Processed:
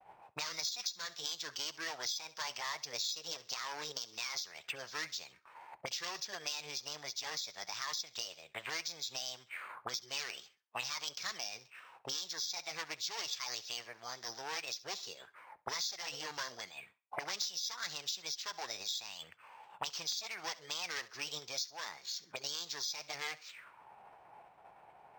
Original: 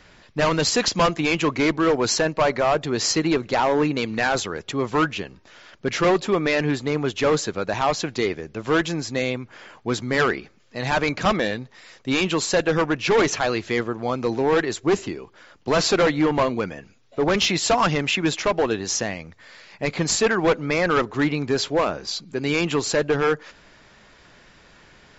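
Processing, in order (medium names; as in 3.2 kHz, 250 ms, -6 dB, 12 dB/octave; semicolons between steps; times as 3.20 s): bass shelf 130 Hz +5 dB; auto-wah 500–4200 Hz, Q 4.8, up, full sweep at -22.5 dBFS; formant shift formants +6 st; graphic EQ 125/250/4000 Hz +4/-6/-4 dB; expander -60 dBFS; thinning echo 67 ms, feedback 26%, level -20 dB; compression 5:1, threshold -42 dBFS, peak gain reduction 16 dB; decimation joined by straight lines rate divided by 4×; trim +9 dB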